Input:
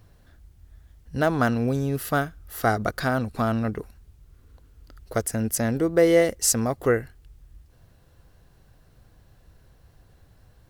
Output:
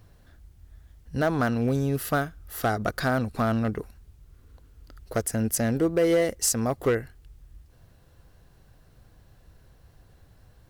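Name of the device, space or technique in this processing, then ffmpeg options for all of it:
limiter into clipper: -af "alimiter=limit=0.251:level=0:latency=1:release=239,asoftclip=type=hard:threshold=0.158"

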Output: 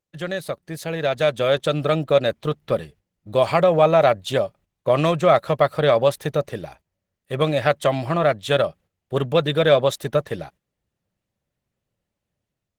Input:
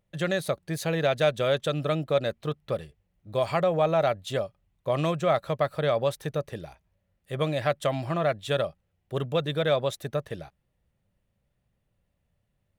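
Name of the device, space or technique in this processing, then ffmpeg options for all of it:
video call: -filter_complex "[0:a]asettb=1/sr,asplit=3[s0][s1][s2];[s0]atrim=end=2.594[s3];[s1]atrim=start=2.59:end=3.32,asetpts=PTS-STARTPTS,afade=t=in:d=0.004:c=qsin,afade=t=out:st=0.726:d=0.004:c=qsin,adynamicequalizer=threshold=0.00355:dfrequency=230:dqfactor=3:tfrequency=230:tqfactor=3:attack=5:release=100:ratio=0.375:range=2:mode=boostabove:tftype=bell[s4];[s2]atrim=start=3.316[s5];[s3][s4]acrossfade=d=0.004:c1=hsin:c2=qsin[s6];[s6][s5]acrossfade=d=0.004:c1=qsin:c2=hsin,highpass=f=120:p=1,dynaudnorm=f=890:g=3:m=3.16,agate=range=0.282:threshold=0.00501:ratio=16:detection=peak" -ar 48000 -c:a libopus -b:a 16k

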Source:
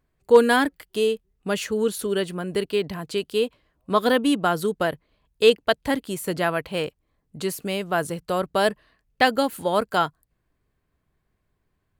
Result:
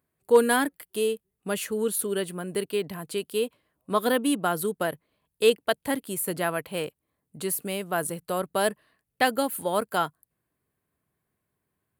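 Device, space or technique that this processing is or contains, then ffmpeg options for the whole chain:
budget condenser microphone: -af "highpass=110,highshelf=f=7900:t=q:w=1.5:g=8.5,volume=0.631"

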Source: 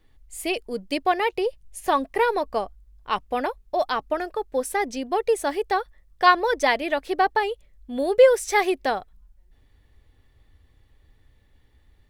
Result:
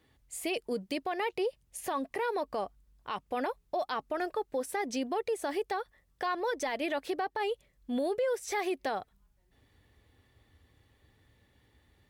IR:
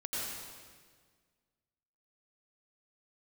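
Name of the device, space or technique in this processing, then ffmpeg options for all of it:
podcast mastering chain: -af "highpass=93,deesser=0.65,acompressor=threshold=0.0562:ratio=4,alimiter=limit=0.0668:level=0:latency=1:release=27" -ar 44100 -c:a libmp3lame -b:a 96k

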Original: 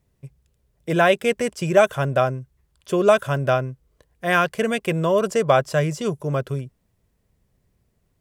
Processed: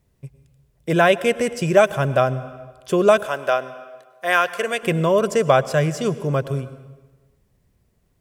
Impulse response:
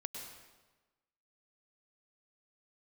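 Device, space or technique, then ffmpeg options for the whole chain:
compressed reverb return: -filter_complex "[0:a]asplit=2[s0][s1];[1:a]atrim=start_sample=2205[s2];[s1][s2]afir=irnorm=-1:irlink=0,acompressor=threshold=0.0794:ratio=6,volume=0.531[s3];[s0][s3]amix=inputs=2:normalize=0,asettb=1/sr,asplit=3[s4][s5][s6];[s4]atrim=end=3.264[s7];[s5]atrim=start=3.26:end=4.83,asetpts=PTS-STARTPTS,afade=t=in:d=0.004:c=qsin,afade=t=out:st=1.566:d=0.004:c=qsin,highpass=480[s8];[s6]atrim=start=4.826[s9];[s7][s8]acrossfade=d=0.004:c1=hsin:c2=qsin[s10];[s10][s9]acrossfade=d=0.004:c1=qsin:c2=hsin"

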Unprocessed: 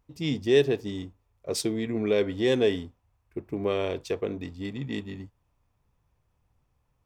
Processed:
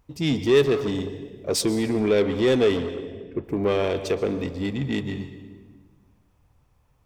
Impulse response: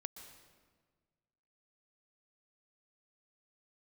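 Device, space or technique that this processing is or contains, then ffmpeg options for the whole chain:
saturated reverb return: -filter_complex "[0:a]asettb=1/sr,asplit=3[s0][s1][s2];[s0]atrim=end=2.774[s3];[s1]atrim=start=2.77:end=3.44,asetpts=PTS-STARTPTS,afade=t=in:d=0.004:c=qsin,afade=t=out:st=0.666:d=0.004:c=qsin,lowpass=3600[s4];[s2]atrim=start=3.436[s5];[s3][s4]acrossfade=d=0.004:c1=hsin:c2=qsin[s6];[s6][s5]acrossfade=d=0.004:c1=qsin:c2=hsin,asplit=2[s7][s8];[1:a]atrim=start_sample=2205[s9];[s8][s9]afir=irnorm=-1:irlink=0,asoftclip=type=tanh:threshold=0.0251,volume=2.37[s10];[s7][s10]amix=inputs=2:normalize=0"

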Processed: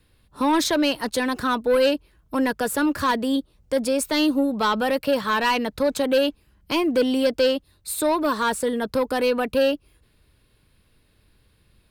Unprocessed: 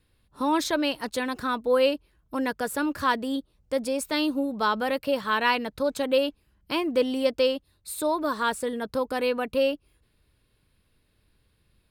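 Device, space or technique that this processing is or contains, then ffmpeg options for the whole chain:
one-band saturation: -filter_complex "[0:a]acrossover=split=290|4000[s0][s1][s2];[s1]asoftclip=type=tanh:threshold=0.075[s3];[s0][s3][s2]amix=inputs=3:normalize=0,volume=2.11"

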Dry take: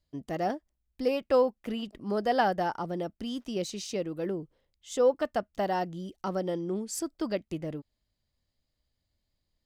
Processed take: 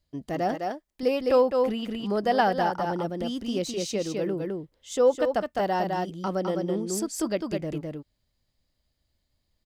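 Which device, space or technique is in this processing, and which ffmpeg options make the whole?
ducked delay: -filter_complex "[0:a]asplit=3[s0][s1][s2];[s1]adelay=208,volume=0.75[s3];[s2]apad=whole_len=434950[s4];[s3][s4]sidechaincompress=threshold=0.0316:ratio=8:attack=20:release=213[s5];[s0][s5]amix=inputs=2:normalize=0,asettb=1/sr,asplit=3[s6][s7][s8];[s6]atrim=end=0.554[s9];[s7]atrim=start=0.55:end=1.03,asetpts=PTS-STARTPTS,afade=t=in:d=0.004:c=qsin,afade=t=out:st=0.476:d=0.004:c=qsin,equalizer=f=70:t=o:w=2.8:g=-13[s10];[s8]atrim=start=1.026[s11];[s9][s10]acrossfade=d=0.004:c1=hsin:c2=qsin[s12];[s12][s11]acrossfade=d=0.004:c1=qsin:c2=hsin,volume=1.41"

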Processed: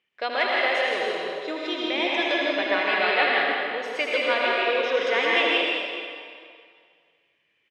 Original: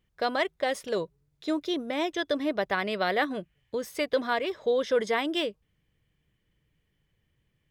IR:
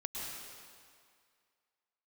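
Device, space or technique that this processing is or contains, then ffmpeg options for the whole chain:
station announcement: -filter_complex "[0:a]highpass=420,lowpass=4800,equalizer=f=2500:t=o:w=0.6:g=11,aecho=1:1:78.72|163.3:0.447|0.562[s0];[1:a]atrim=start_sample=2205[s1];[s0][s1]afir=irnorm=-1:irlink=0,volume=1.33"

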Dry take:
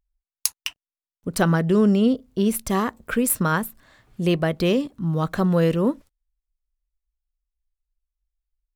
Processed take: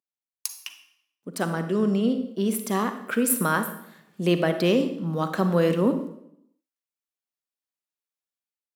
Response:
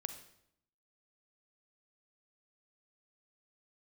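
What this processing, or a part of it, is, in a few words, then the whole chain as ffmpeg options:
far laptop microphone: -filter_complex "[1:a]atrim=start_sample=2205[s0];[0:a][s0]afir=irnorm=-1:irlink=0,highpass=f=180:w=0.5412,highpass=f=180:w=1.3066,dynaudnorm=f=830:g=3:m=3.35,volume=0.473"

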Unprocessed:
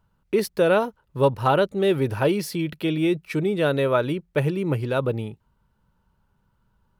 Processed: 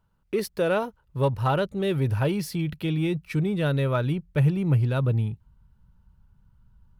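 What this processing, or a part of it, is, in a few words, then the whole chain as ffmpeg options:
parallel distortion: -filter_complex "[0:a]asubboost=boost=6:cutoff=160,asplit=2[s0][s1];[s1]asoftclip=type=hard:threshold=0.0668,volume=0.211[s2];[s0][s2]amix=inputs=2:normalize=0,volume=0.562"

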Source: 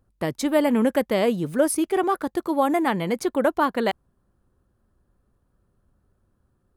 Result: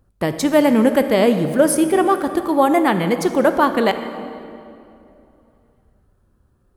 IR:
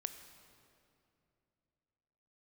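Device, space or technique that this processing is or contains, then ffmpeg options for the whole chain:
stairwell: -filter_complex "[1:a]atrim=start_sample=2205[s0];[0:a][s0]afir=irnorm=-1:irlink=0,equalizer=f=64:w=1.5:g=2.5,volume=2.51"

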